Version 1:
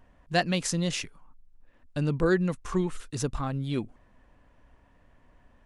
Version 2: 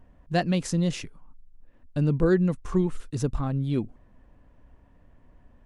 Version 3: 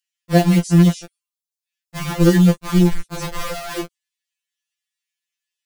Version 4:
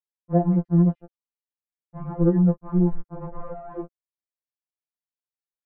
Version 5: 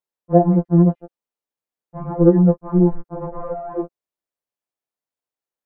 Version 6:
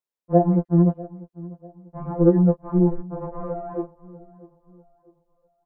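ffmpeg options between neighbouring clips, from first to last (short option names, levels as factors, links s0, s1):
-af "tiltshelf=f=660:g=5"
-filter_complex "[0:a]acrossover=split=3400[s0][s1];[s0]acrusher=bits=4:mix=0:aa=0.000001[s2];[s2][s1]amix=inputs=2:normalize=0,afftfilt=real='re*2.83*eq(mod(b,8),0)':imag='im*2.83*eq(mod(b,8),0)':win_size=2048:overlap=0.75,volume=2.24"
-af "lowpass=f=1000:w=0.5412,lowpass=f=1000:w=1.3066,volume=0.501"
-af "equalizer=f=520:t=o:w=2.7:g=10"
-filter_complex "[0:a]asplit=2[s0][s1];[s1]adelay=645,lowpass=f=1500:p=1,volume=0.106,asplit=2[s2][s3];[s3]adelay=645,lowpass=f=1500:p=1,volume=0.44,asplit=2[s4][s5];[s5]adelay=645,lowpass=f=1500:p=1,volume=0.44[s6];[s0][s2][s4][s6]amix=inputs=4:normalize=0,volume=0.668"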